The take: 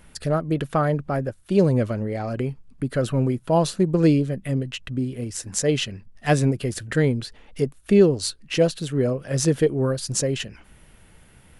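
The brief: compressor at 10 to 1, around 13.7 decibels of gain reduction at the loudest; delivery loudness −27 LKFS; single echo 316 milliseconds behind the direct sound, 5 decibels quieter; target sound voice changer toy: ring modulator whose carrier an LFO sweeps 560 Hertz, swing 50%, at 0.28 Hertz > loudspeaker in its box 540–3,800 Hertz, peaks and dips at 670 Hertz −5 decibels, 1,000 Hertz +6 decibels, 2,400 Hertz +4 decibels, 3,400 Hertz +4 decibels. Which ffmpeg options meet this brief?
ffmpeg -i in.wav -af "acompressor=threshold=-25dB:ratio=10,aecho=1:1:316:0.562,aeval=exprs='val(0)*sin(2*PI*560*n/s+560*0.5/0.28*sin(2*PI*0.28*n/s))':channel_layout=same,highpass=540,equalizer=frequency=670:width_type=q:width=4:gain=-5,equalizer=frequency=1000:width_type=q:width=4:gain=6,equalizer=frequency=2400:width_type=q:width=4:gain=4,equalizer=frequency=3400:width_type=q:width=4:gain=4,lowpass=frequency=3800:width=0.5412,lowpass=frequency=3800:width=1.3066,volume=6.5dB" out.wav

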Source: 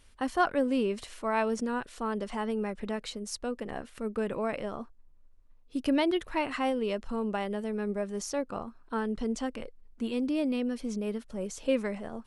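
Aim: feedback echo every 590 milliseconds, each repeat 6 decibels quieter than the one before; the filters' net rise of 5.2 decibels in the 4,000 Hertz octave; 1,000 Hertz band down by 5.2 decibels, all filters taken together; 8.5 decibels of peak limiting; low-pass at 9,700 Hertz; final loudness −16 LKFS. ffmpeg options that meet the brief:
ffmpeg -i in.wav -af "lowpass=9700,equalizer=frequency=1000:width_type=o:gain=-7.5,equalizer=frequency=4000:width_type=o:gain=8,alimiter=limit=-24dB:level=0:latency=1,aecho=1:1:590|1180|1770|2360|2950|3540:0.501|0.251|0.125|0.0626|0.0313|0.0157,volume=18dB" out.wav

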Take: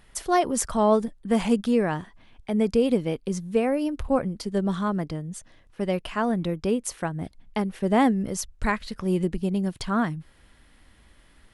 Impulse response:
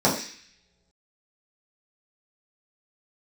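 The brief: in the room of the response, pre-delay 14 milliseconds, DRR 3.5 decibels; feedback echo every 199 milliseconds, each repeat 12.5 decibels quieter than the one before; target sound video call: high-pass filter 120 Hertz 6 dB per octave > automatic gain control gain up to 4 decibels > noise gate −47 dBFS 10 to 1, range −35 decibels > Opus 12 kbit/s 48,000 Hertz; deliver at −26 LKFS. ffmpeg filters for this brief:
-filter_complex "[0:a]aecho=1:1:199|398|597:0.237|0.0569|0.0137,asplit=2[link_01][link_02];[1:a]atrim=start_sample=2205,adelay=14[link_03];[link_02][link_03]afir=irnorm=-1:irlink=0,volume=-21dB[link_04];[link_01][link_04]amix=inputs=2:normalize=0,highpass=frequency=120:poles=1,dynaudnorm=maxgain=4dB,agate=range=-35dB:threshold=-47dB:ratio=10,volume=-4dB" -ar 48000 -c:a libopus -b:a 12k

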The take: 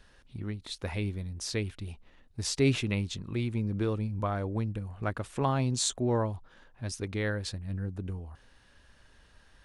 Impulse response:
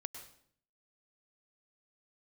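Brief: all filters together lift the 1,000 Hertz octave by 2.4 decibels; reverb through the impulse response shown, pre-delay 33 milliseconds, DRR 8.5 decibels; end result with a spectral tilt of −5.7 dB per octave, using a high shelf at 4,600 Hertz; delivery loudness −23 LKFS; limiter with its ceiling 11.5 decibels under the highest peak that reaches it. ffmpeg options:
-filter_complex "[0:a]equalizer=frequency=1000:width_type=o:gain=3.5,highshelf=frequency=4600:gain=-9,alimiter=level_in=1dB:limit=-24dB:level=0:latency=1,volume=-1dB,asplit=2[link_01][link_02];[1:a]atrim=start_sample=2205,adelay=33[link_03];[link_02][link_03]afir=irnorm=-1:irlink=0,volume=-6dB[link_04];[link_01][link_04]amix=inputs=2:normalize=0,volume=12.5dB"

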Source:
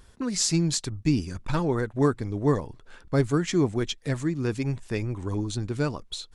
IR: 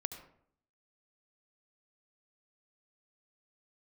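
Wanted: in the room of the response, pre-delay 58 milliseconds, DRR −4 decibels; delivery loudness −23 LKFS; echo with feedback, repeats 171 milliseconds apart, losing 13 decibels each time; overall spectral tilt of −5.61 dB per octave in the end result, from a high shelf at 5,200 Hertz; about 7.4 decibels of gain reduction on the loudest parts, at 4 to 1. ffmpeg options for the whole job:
-filter_complex "[0:a]highshelf=frequency=5200:gain=-6,acompressor=threshold=-26dB:ratio=4,aecho=1:1:171|342|513:0.224|0.0493|0.0108,asplit=2[link_01][link_02];[1:a]atrim=start_sample=2205,adelay=58[link_03];[link_02][link_03]afir=irnorm=-1:irlink=0,volume=4.5dB[link_04];[link_01][link_04]amix=inputs=2:normalize=0,volume=2.5dB"

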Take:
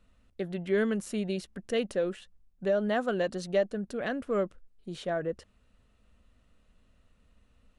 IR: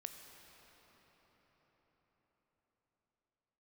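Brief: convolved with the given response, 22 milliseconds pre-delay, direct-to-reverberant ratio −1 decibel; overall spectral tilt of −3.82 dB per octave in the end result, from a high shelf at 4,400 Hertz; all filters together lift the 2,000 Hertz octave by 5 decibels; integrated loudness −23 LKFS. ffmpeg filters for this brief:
-filter_complex "[0:a]equalizer=frequency=2000:width_type=o:gain=5,highshelf=frequency=4400:gain=8,asplit=2[link_01][link_02];[1:a]atrim=start_sample=2205,adelay=22[link_03];[link_02][link_03]afir=irnorm=-1:irlink=0,volume=5dB[link_04];[link_01][link_04]amix=inputs=2:normalize=0,volume=4dB"

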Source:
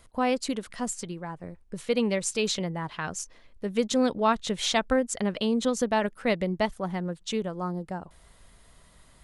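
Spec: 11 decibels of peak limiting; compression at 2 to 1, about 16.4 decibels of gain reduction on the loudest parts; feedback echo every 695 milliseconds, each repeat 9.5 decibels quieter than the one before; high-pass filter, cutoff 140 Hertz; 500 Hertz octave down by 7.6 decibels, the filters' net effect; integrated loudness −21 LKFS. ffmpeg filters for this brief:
ffmpeg -i in.wav -af "highpass=140,equalizer=frequency=500:width_type=o:gain=-9,acompressor=threshold=-52dB:ratio=2,alimiter=level_in=13.5dB:limit=-24dB:level=0:latency=1,volume=-13.5dB,aecho=1:1:695|1390|2085|2780:0.335|0.111|0.0365|0.012,volume=26dB" out.wav

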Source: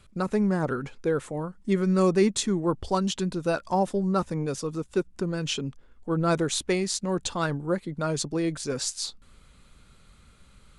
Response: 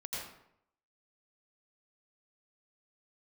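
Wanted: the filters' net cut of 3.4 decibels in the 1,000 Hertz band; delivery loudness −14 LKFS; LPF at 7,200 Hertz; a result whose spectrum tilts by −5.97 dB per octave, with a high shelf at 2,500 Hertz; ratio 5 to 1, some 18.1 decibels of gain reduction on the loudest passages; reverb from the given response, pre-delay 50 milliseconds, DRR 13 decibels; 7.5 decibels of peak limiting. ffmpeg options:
-filter_complex "[0:a]lowpass=7200,equalizer=frequency=1000:width_type=o:gain=-3,highshelf=frequency=2500:gain=-8.5,acompressor=threshold=-39dB:ratio=5,alimiter=level_in=9.5dB:limit=-24dB:level=0:latency=1,volume=-9.5dB,asplit=2[link_01][link_02];[1:a]atrim=start_sample=2205,adelay=50[link_03];[link_02][link_03]afir=irnorm=-1:irlink=0,volume=-14dB[link_04];[link_01][link_04]amix=inputs=2:normalize=0,volume=29dB"

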